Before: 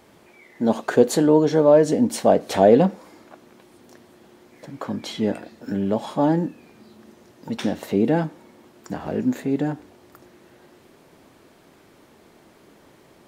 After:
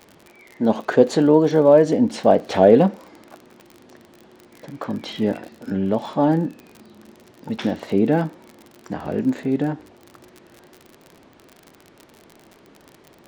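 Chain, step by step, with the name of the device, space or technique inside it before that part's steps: lo-fi chain (LPF 4700 Hz 12 dB/oct; wow and flutter; crackle 44/s -32 dBFS); gain +1.5 dB

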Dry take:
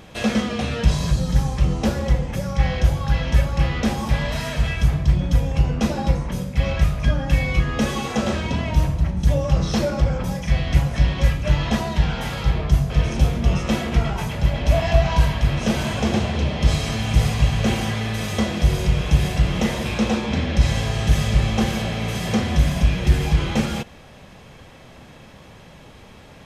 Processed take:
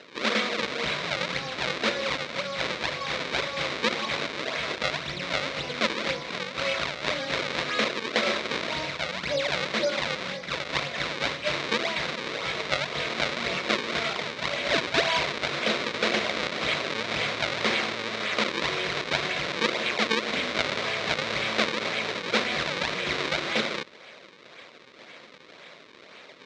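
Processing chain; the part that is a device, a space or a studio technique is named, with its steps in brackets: 9.36–10.76 air absorption 370 m; circuit-bent sampling toy (decimation with a swept rate 37×, swing 160% 1.9 Hz; speaker cabinet 490–5700 Hz, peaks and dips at 820 Hz -9 dB, 2200 Hz +7 dB, 3800 Hz +8 dB); gain +1.5 dB

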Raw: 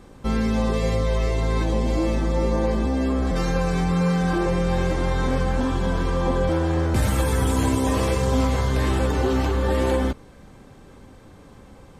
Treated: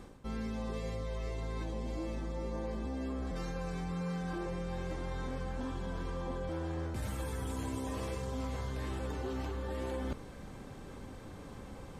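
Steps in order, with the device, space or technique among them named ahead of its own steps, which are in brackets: compression on the reversed sound (reverse; compressor 5:1, threshold -36 dBFS, peak gain reduction 17 dB; reverse); gain -1 dB

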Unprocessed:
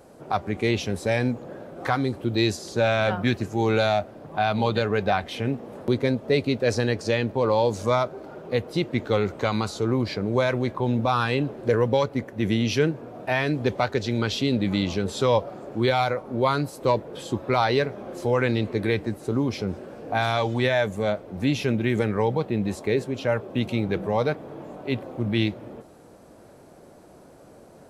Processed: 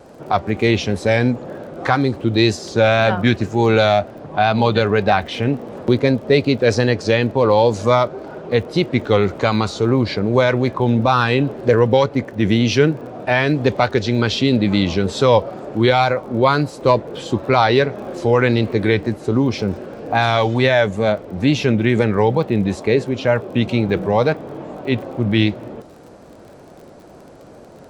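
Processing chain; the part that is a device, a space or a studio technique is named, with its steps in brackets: lo-fi chain (LPF 6800 Hz 12 dB/oct; wow and flutter; crackle 35/s -43 dBFS); gain +7.5 dB

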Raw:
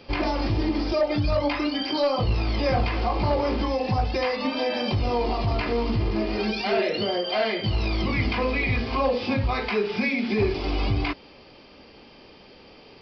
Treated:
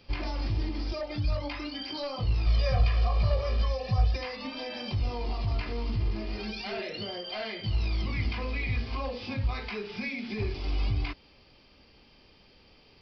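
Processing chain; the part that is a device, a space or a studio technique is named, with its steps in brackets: smiley-face EQ (low shelf 130 Hz +8.5 dB; bell 430 Hz -5.5 dB 3 oct; high shelf 5000 Hz +4.5 dB); 2.46–4.16 comb 1.7 ms, depth 93%; gain -8.5 dB

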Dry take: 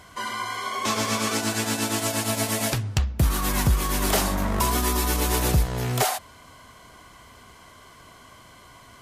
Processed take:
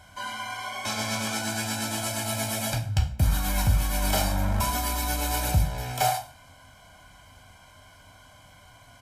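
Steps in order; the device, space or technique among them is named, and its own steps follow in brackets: microphone above a desk (comb 1.3 ms, depth 74%; reverb RT60 0.40 s, pre-delay 3 ms, DRR 2.5 dB); gain -7 dB

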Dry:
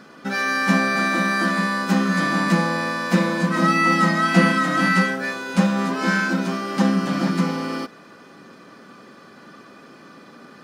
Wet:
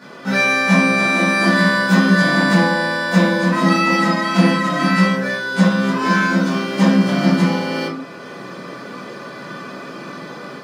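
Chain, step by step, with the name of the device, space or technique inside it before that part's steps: far laptop microphone (reverb RT60 0.50 s, pre-delay 12 ms, DRR -9.5 dB; HPF 100 Hz; AGC gain up to 4 dB); gain -1 dB

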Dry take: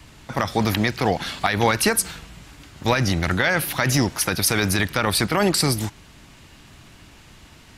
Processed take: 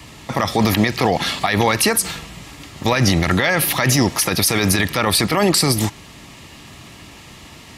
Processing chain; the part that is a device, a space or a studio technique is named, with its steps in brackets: PA system with an anti-feedback notch (HPF 100 Hz 6 dB/oct; Butterworth band-stop 1500 Hz, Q 7.9; limiter -14 dBFS, peak gain reduction 10 dB); gain +8.5 dB

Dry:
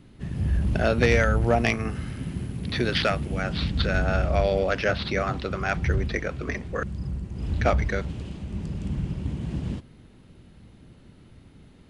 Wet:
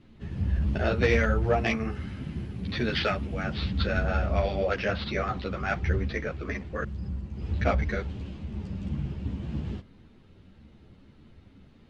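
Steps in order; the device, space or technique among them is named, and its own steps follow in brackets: string-machine ensemble chorus (ensemble effect; LPF 5100 Hz 12 dB/oct)

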